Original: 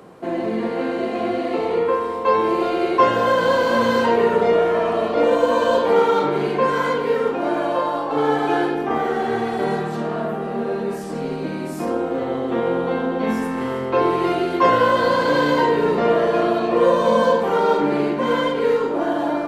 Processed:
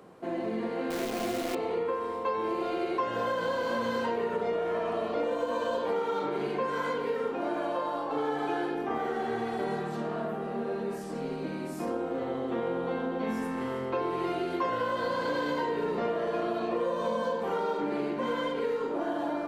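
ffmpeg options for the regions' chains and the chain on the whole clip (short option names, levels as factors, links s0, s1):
-filter_complex "[0:a]asettb=1/sr,asplit=3[s0][s1][s2];[s0]atrim=end=0.904[s3];[s1]atrim=start=0.9:end=1.55,asetpts=PTS-STARTPTS,afade=t=in:d=0.004:c=qsin,afade=t=out:st=0.646:d=0.004:c=qsin,equalizer=f=150:w=3:g=9,acrusher=bits=5:dc=4:mix=0:aa=0.000001[s4];[s2]atrim=start=1.546[s5];[s3][s4]acrossfade=d=0.004:c1=hsin:c2=qsin[s6];[s6][s5]acrossfade=d=0.004:c1=qsin:c2=hsin,bandreject=f=50:t=h:w=6,bandreject=f=100:t=h:w=6,bandreject=f=150:t=h:w=6,acompressor=threshold=0.126:ratio=6,volume=0.376"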